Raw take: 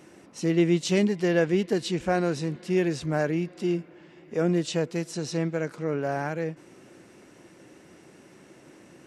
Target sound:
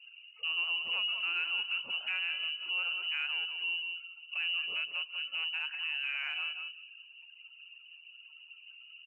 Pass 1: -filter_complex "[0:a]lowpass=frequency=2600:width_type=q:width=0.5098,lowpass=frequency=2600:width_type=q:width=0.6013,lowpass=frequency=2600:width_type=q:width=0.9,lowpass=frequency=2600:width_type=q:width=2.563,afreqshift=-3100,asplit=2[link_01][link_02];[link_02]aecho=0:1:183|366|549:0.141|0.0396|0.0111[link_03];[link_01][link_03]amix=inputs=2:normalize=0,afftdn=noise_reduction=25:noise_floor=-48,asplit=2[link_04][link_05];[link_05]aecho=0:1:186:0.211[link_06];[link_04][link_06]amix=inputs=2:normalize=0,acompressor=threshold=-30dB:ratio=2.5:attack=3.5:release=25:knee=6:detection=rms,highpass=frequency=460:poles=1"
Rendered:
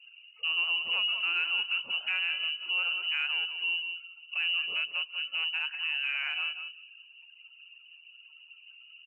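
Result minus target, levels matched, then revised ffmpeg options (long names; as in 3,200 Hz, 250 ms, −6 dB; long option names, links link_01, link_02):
downward compressor: peak gain reduction −4 dB
-filter_complex "[0:a]lowpass=frequency=2600:width_type=q:width=0.5098,lowpass=frequency=2600:width_type=q:width=0.6013,lowpass=frequency=2600:width_type=q:width=0.9,lowpass=frequency=2600:width_type=q:width=2.563,afreqshift=-3100,asplit=2[link_01][link_02];[link_02]aecho=0:1:183|366|549:0.141|0.0396|0.0111[link_03];[link_01][link_03]amix=inputs=2:normalize=0,afftdn=noise_reduction=25:noise_floor=-48,asplit=2[link_04][link_05];[link_05]aecho=0:1:186:0.211[link_06];[link_04][link_06]amix=inputs=2:normalize=0,acompressor=threshold=-36.5dB:ratio=2.5:attack=3.5:release=25:knee=6:detection=rms,highpass=frequency=460:poles=1"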